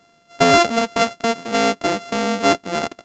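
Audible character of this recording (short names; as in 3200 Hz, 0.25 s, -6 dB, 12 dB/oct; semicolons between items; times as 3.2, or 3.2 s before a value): a buzz of ramps at a fixed pitch in blocks of 64 samples; A-law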